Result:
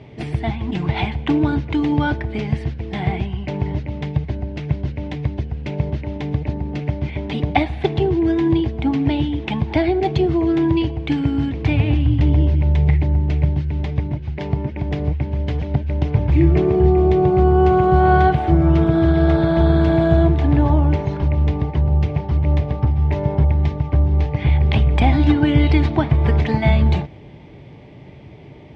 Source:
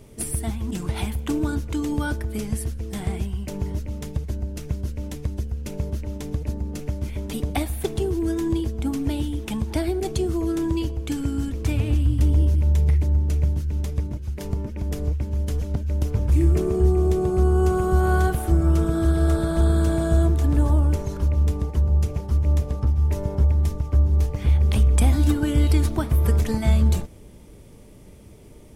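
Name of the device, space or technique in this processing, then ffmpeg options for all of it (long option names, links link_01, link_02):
guitar cabinet: -af "highpass=97,equalizer=frequency=140:width_type=q:width=4:gain=7,equalizer=frequency=210:width_type=q:width=4:gain=-6,equalizer=frequency=480:width_type=q:width=4:gain=-5,equalizer=frequency=780:width_type=q:width=4:gain=6,equalizer=frequency=1300:width_type=q:width=4:gain=-6,equalizer=frequency=2100:width_type=q:width=4:gain=5,lowpass=frequency=3700:width=0.5412,lowpass=frequency=3700:width=1.3066,volume=8dB"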